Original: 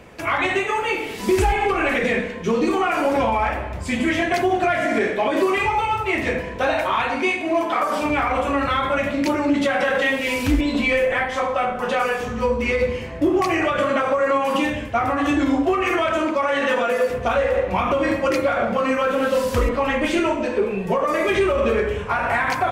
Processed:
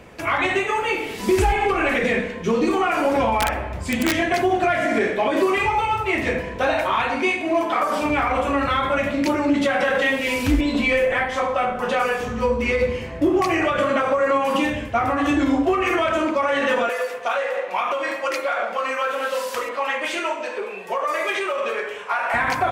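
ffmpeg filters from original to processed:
-filter_complex "[0:a]asettb=1/sr,asplit=3[a][b][c];[a]atrim=end=3.384[d];[b]atrim=start=3.38:end=4.16,asetpts=PTS-STARTPTS,afade=t=in:d=0.004:c=qsin,afade=t=out:st=0.776:d=0.004:c=qsin,aeval=exprs='(mod(3.98*val(0)+1,2)-1)/3.98':c=same[e];[c]atrim=start=4.156[f];[d][e]acrossfade=d=0.004:c1=hsin:c2=qsin[g];[g][f]acrossfade=d=0.004:c1=qsin:c2=hsin,asettb=1/sr,asplit=3[h][i][j];[h]atrim=end=16.894[k];[i]atrim=start=16.89:end=22.34,asetpts=PTS-STARTPTS,afade=t=in:d=0.004:c=qsin,afade=t=out:st=5.446:d=0.004:c=qsin,highpass=670[l];[j]atrim=start=22.336[m];[k][l]acrossfade=d=0.004:c1=hsin:c2=qsin[n];[n][m]acrossfade=d=0.004:c1=qsin:c2=hsin"

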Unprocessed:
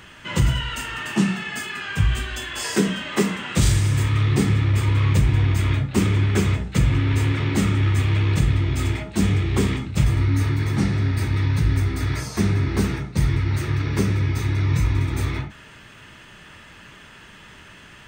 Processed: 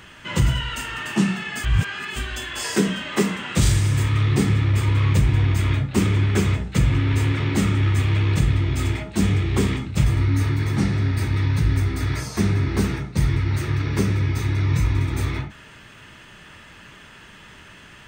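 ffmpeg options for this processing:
-filter_complex "[0:a]asplit=3[a][b][c];[a]atrim=end=1.642[d];[b]atrim=start=1.638:end=2.162,asetpts=PTS-STARTPTS,areverse[e];[c]atrim=start=2.158[f];[d][e]acrossfade=d=0.004:c1=hsin:c2=hsin[g];[g][f]acrossfade=d=0.004:c1=hsin:c2=hsin"

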